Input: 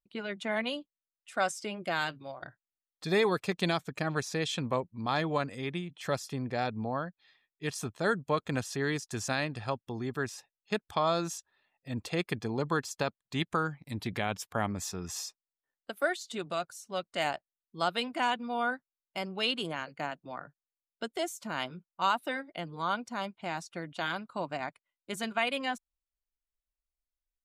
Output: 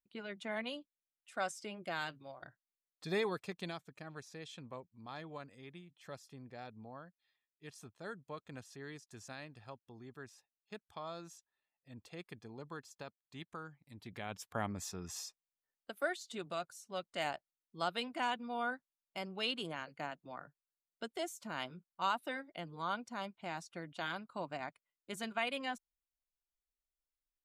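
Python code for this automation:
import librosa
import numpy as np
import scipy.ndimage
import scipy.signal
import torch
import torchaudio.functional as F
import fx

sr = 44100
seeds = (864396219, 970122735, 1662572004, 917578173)

y = fx.gain(x, sr, db=fx.line((3.18, -8.0), (3.97, -17.0), (13.96, -17.0), (14.51, -6.5)))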